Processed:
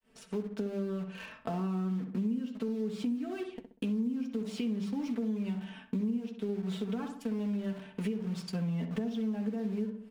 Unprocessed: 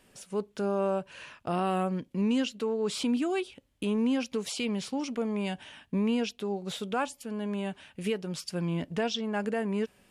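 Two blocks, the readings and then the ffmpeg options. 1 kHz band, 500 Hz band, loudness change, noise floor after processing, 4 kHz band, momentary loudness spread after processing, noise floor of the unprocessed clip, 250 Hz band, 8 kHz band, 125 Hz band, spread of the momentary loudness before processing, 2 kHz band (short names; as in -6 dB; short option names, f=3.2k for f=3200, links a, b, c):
-12.0 dB, -7.5 dB, -3.5 dB, -57 dBFS, -11.5 dB, 5 LU, -65 dBFS, -1.5 dB, under -10 dB, -0.5 dB, 8 LU, -10.5 dB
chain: -filter_complex "[0:a]aecho=1:1:4.5:0.82,adynamicequalizer=threshold=0.02:dfrequency=240:dqfactor=0.72:tfrequency=240:tqfactor=0.72:attack=5:release=100:ratio=0.375:range=3:mode=boostabove:tftype=bell,acrossover=split=310[a][b];[b]acompressor=threshold=-33dB:ratio=10[c];[a][c]amix=inputs=2:normalize=0,bandreject=f=50:t=h:w=6,bandreject=f=100:t=h:w=6,bandreject=f=150:t=h:w=6,bandreject=f=200:t=h:w=6,agate=range=-33dB:threshold=-54dB:ratio=3:detection=peak,asplit=2[d][e];[e]acrusher=bits=5:mix=0:aa=0.000001,volume=-5dB[f];[d][f]amix=inputs=2:normalize=0,flanger=delay=8.5:depth=1.3:regen=-48:speed=0.53:shape=sinusoidal,highshelf=f=5k:g=-12,asplit=2[g][h];[h]adelay=64,lowpass=f=1.9k:p=1,volume=-7.5dB,asplit=2[i][j];[j]adelay=64,lowpass=f=1.9k:p=1,volume=0.4,asplit=2[k][l];[l]adelay=64,lowpass=f=1.9k:p=1,volume=0.4,asplit=2[m][n];[n]adelay=64,lowpass=f=1.9k:p=1,volume=0.4,asplit=2[o][p];[p]adelay=64,lowpass=f=1.9k:p=1,volume=0.4[q];[g][i][k][m][o][q]amix=inputs=6:normalize=0,acompressor=threshold=-34dB:ratio=5,volume=2dB"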